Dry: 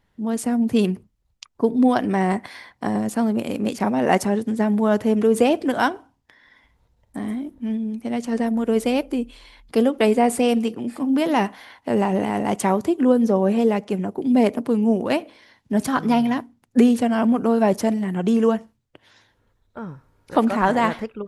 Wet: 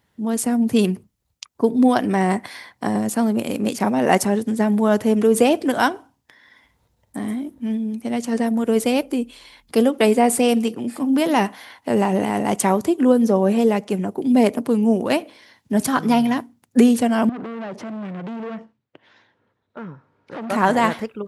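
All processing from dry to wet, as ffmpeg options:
ffmpeg -i in.wav -filter_complex "[0:a]asettb=1/sr,asplit=3[link_01][link_02][link_03];[link_01]atrim=end=17.294[link_04];[link_02]atrim=start=17.29:end=20.5,asetpts=PTS-STARTPTS,afade=type=in:duration=0.004:curve=qsin,afade=type=out:start_time=3.206:duration=0.004:curve=qsin,acompressor=threshold=-21dB:ratio=10:attack=3.2:release=140:knee=1:detection=peak,asoftclip=type=hard:threshold=-29.5dB,highpass=140,lowpass=2700[link_05];[link_03]atrim=start=20.496[link_06];[link_04][link_05]acrossfade=duration=0.004:curve1=hsin:curve2=qsin[link_07];[link_07][link_06]acrossfade=duration=0.004:curve1=qsin:curve2=hsin,highpass=79,highshelf=frequency=6200:gain=8,volume=1.5dB" out.wav

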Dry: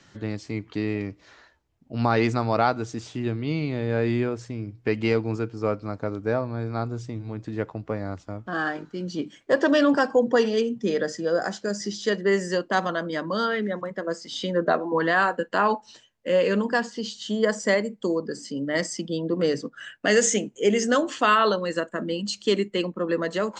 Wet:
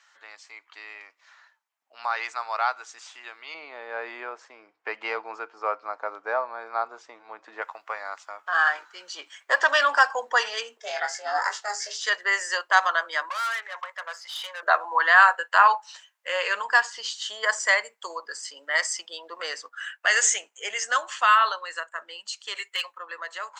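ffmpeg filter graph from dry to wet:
ffmpeg -i in.wav -filter_complex "[0:a]asettb=1/sr,asplit=3[link_01][link_02][link_03];[link_01]atrim=end=3.544[link_04];[link_02]atrim=start=3.54:end=7.62,asetpts=PTS-STARTPTS,afade=type=in:duration=0.004:curve=qsin,afade=type=out:start_time=4.076:duration=0.004:curve=qsin,lowpass=6200,tiltshelf=frequency=1100:gain=9[link_05];[link_03]atrim=start=7.616[link_06];[link_04][link_05]acrossfade=duration=0.004:curve1=hsin:curve2=qsin[link_07];[link_07][link_06]acrossfade=duration=0.004:curve1=qsin:curve2=hsin,asettb=1/sr,asplit=3[link_08][link_09][link_10];[link_08]atrim=end=10.774[link_11];[link_09]atrim=start=10.77:end=12.01,asetpts=PTS-STARTPTS,afade=type=in:duration=0.004:curve=qsin,afade=type=out:start_time=1.236:duration=0.004:curve=qsin,aeval=exprs='val(0)*sin(2*PI*210*n/s)':channel_layout=same,asplit=2[link_12][link_13];[link_13]adelay=22,volume=-5dB[link_14];[link_12][link_14]amix=inputs=2:normalize=0,atrim=end_sample=54684[link_15];[link_10]atrim=start=12.006[link_16];[link_11][link_15]acrossfade=duration=0.004:curve1=hsin:curve2=qsin[link_17];[link_17][link_16]acrossfade=duration=0.004:curve1=qsin:curve2=hsin,asettb=1/sr,asplit=3[link_18][link_19][link_20];[link_18]atrim=end=13.294[link_21];[link_19]atrim=start=13.29:end=14.63,asetpts=PTS-STARTPTS,afade=type=in:duration=0.004:curve=qsin,afade=type=out:start_time=1.336:duration=0.004:curve=qsin,acrossover=split=4700[link_22][link_23];[link_23]acompressor=threshold=-55dB:ratio=4:attack=1:release=60[link_24];[link_22][link_24]amix=inputs=2:normalize=0,highpass=frequency=550:width=0.5412,highpass=frequency=550:width=1.3066,aeval=exprs='(tanh(39.8*val(0)+0.3)-tanh(0.3))/39.8':channel_layout=same[link_25];[link_20]atrim=start=14.626[link_26];[link_21][link_25]acrossfade=duration=0.004:curve1=hsin:curve2=qsin[link_27];[link_27][link_26]acrossfade=duration=0.004:curve1=qsin:curve2=hsin,asettb=1/sr,asplit=3[link_28][link_29][link_30];[link_28]atrim=end=22.554[link_31];[link_29]atrim=start=22.55:end=22.98,asetpts=PTS-STARTPTS,afade=type=in:duration=0.004:curve=qsin,afade=type=out:start_time=0.426:duration=0.004:curve=qsin,tiltshelf=frequency=700:gain=-7.5,aecho=1:1:7.3:0.53,atrim=end_sample=18963,asoftclip=type=hard:threshold=-15.5dB[link_32];[link_30]atrim=start=22.976[link_33];[link_31][link_32]acrossfade=duration=0.004:curve1=hsin:curve2=qsin[link_34];[link_34][link_33]acrossfade=duration=0.004:curve1=qsin:curve2=hsin,highpass=frequency=930:width=0.5412,highpass=frequency=930:width=1.3066,equalizer=frequency=4300:width=0.74:gain=-5.5,dynaudnorm=framelen=750:gausssize=11:maxgain=10dB" out.wav

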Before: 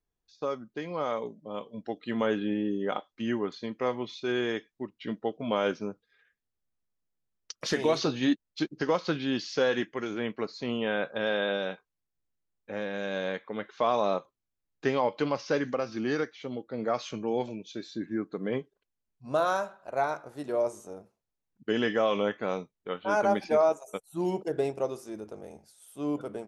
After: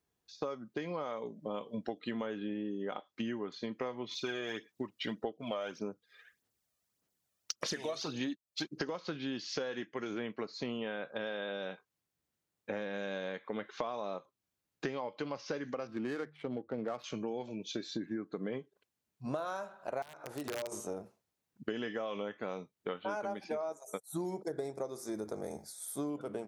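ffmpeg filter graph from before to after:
ffmpeg -i in.wav -filter_complex "[0:a]asettb=1/sr,asplit=3[link_01][link_02][link_03];[link_01]atrim=end=4.114[link_04];[link_02]atrim=start=4.11:end=8.9,asetpts=PTS-STARTPTS,afade=type=in:duration=0.004:curve=qsin,afade=type=out:start_time=4.786:duration=0.004:curve=qsin,bass=frequency=250:gain=-4,treble=frequency=4000:gain=5,aphaser=in_gain=1:out_gain=1:delay=1.7:decay=0.51:speed=1.7:type=sinusoidal[link_05];[link_03]atrim=start=8.896[link_06];[link_04][link_05]acrossfade=duration=0.004:curve1=hsin:curve2=qsin[link_07];[link_07][link_06]acrossfade=duration=0.004:curve1=qsin:curve2=hsin,asettb=1/sr,asplit=3[link_08][link_09][link_10];[link_08]atrim=end=15.874[link_11];[link_09]atrim=start=15.87:end=17.04,asetpts=PTS-STARTPTS,afade=type=in:duration=0.004:curve=qsin,afade=type=out:start_time=1.166:duration=0.004:curve=qsin,bandreject=frequency=50:width_type=h:width=6,bandreject=frequency=100:width_type=h:width=6,bandreject=frequency=150:width_type=h:width=6,adynamicsmooth=sensitivity=7.5:basefreq=1300[link_12];[link_10]atrim=start=17.036[link_13];[link_11][link_12]acrossfade=duration=0.004:curve1=hsin:curve2=qsin[link_14];[link_14][link_13]acrossfade=duration=0.004:curve1=qsin:curve2=hsin,asettb=1/sr,asplit=3[link_15][link_16][link_17];[link_15]atrim=end=20.024[link_18];[link_16]atrim=start=20.02:end=20.72,asetpts=PTS-STARTPTS,afade=type=in:duration=0.004:curve=qsin,afade=type=out:start_time=0.696:duration=0.004:curve=qsin,equalizer=frequency=180:width_type=o:width=0.32:gain=-13.5,acompressor=threshold=-42dB:ratio=6:attack=3.2:release=140:knee=1:detection=peak,aeval=exprs='(mod(70.8*val(0)+1,2)-1)/70.8':channel_layout=same[link_19];[link_17]atrim=start=20.716[link_20];[link_18][link_19]acrossfade=duration=0.004:curve1=hsin:curve2=qsin[link_21];[link_21][link_20]acrossfade=duration=0.004:curve1=qsin:curve2=hsin,asettb=1/sr,asplit=3[link_22][link_23][link_24];[link_22]atrim=end=23.684[link_25];[link_23]atrim=start=23.68:end=26.1,asetpts=PTS-STARTPTS,afade=type=in:duration=0.004:curve=qsin,afade=type=out:start_time=2.416:duration=0.004:curve=qsin,asuperstop=centerf=2800:order=4:qfactor=2.6,highshelf=frequency=4600:gain=6[link_26];[link_24]atrim=start=26.096[link_27];[link_25][link_26]acrossfade=duration=0.004:curve1=hsin:curve2=qsin[link_28];[link_28][link_27]acrossfade=duration=0.004:curve1=qsin:curve2=hsin,highpass=88,acompressor=threshold=-40dB:ratio=16,volume=6dB" out.wav

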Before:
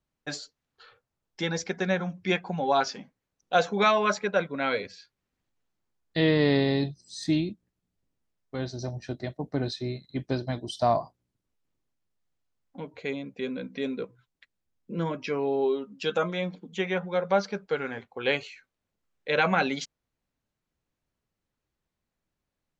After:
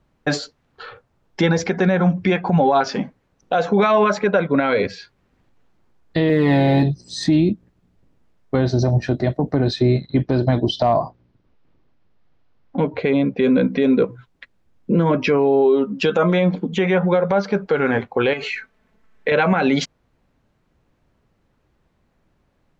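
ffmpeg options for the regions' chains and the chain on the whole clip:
ffmpeg -i in.wav -filter_complex "[0:a]asettb=1/sr,asplit=3[link_01][link_02][link_03];[link_01]atrim=end=6.294[link_04];[link_02]atrim=start=6.29:end=6.83,asetpts=PTS-STARTPTS,afade=type=in:duration=0.004:curve=qsin,afade=type=out:start_time=0.536:duration=0.004:curve=qsin,bass=frequency=250:gain=-5,treble=frequency=4000:gain=-11,aecho=1:1:6:0.84,atrim=end_sample=23814,acrusher=bits=8:mode=log:mix=0:aa=0.000001[link_05];[link_03]atrim=start=6.826[link_06];[link_04][link_05]acrossfade=duration=0.004:curve1=hsin:curve2=qsin[link_07];[link_07][link_06]acrossfade=duration=0.004:curve1=qsin:curve2=hsin,asettb=1/sr,asplit=3[link_08][link_09][link_10];[link_08]atrim=end=9.804[link_11];[link_09]atrim=start=9.8:end=13.43,asetpts=PTS-STARTPTS,afade=type=in:duration=0.004:curve=qsin,afade=type=out:start_time=3.626:duration=0.004:curve=qsin,lowpass=frequency=5300:width=0.5412,lowpass=frequency=5300:width=1.3066,volume=14.5dB,asoftclip=hard,volume=-14.5dB[link_12];[link_10]atrim=start=13.426[link_13];[link_11][link_12]acrossfade=duration=0.004:curve1=hsin:curve2=qsin[link_14];[link_14][link_13]acrossfade=duration=0.004:curve1=qsin:curve2=hsin,asettb=1/sr,asplit=3[link_15][link_16][link_17];[link_15]atrim=end=18.334[link_18];[link_16]atrim=start=18.33:end=19.32,asetpts=PTS-STARTPTS,afade=type=in:duration=0.004:curve=qsin,afade=type=out:start_time=0.986:duration=0.004:curve=qsin,equalizer=frequency=1800:width=1.6:gain=6.5,aecho=1:1:4.6:0.65,atrim=end_sample=43659,acompressor=threshold=-32dB:ratio=8:attack=3.2:release=140:knee=1:detection=peak[link_19];[link_17]atrim=start=19.316[link_20];[link_18][link_19]acrossfade=duration=0.004:curve1=hsin:curve2=qsin[link_21];[link_21][link_20]acrossfade=duration=0.004:curve1=qsin:curve2=hsin,lowpass=frequency=1400:poles=1,acompressor=threshold=-30dB:ratio=6,alimiter=level_in=28dB:limit=-1dB:release=50:level=0:latency=1,volume=-7dB" out.wav

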